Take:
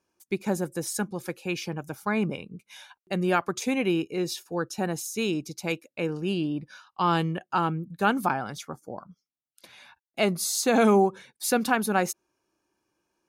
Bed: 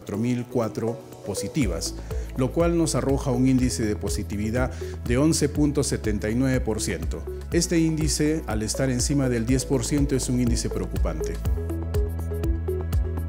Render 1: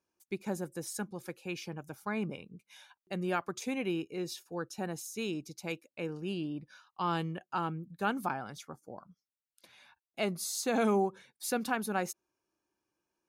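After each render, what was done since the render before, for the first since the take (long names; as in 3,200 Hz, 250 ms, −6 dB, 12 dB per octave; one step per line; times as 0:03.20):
level −8.5 dB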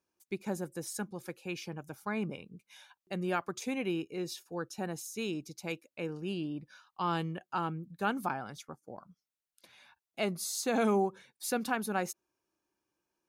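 0:08.56–0:08.98: transient designer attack 0 dB, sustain −7 dB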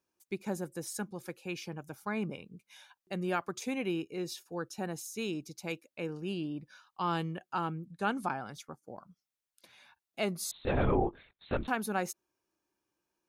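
0:07.85–0:08.48: Butterworth low-pass 11,000 Hz
0:10.51–0:11.68: linear-prediction vocoder at 8 kHz whisper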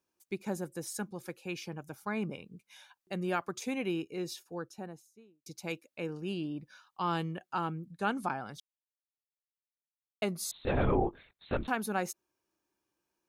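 0:04.25–0:05.46: fade out and dull
0:08.60–0:10.22: silence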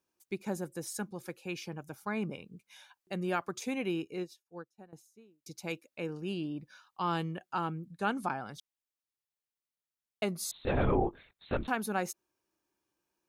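0:04.20–0:04.93: expander for the loud parts 2.5 to 1, over −51 dBFS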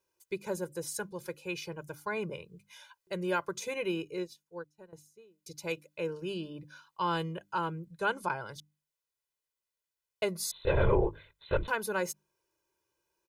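mains-hum notches 50/100/150/200/250/300 Hz
comb filter 2 ms, depth 85%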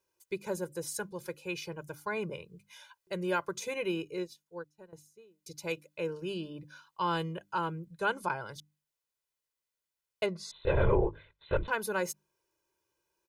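0:10.26–0:11.72: high-frequency loss of the air 130 metres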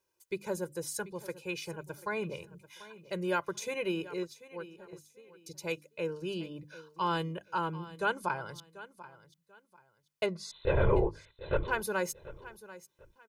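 repeating echo 739 ms, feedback 26%, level −17 dB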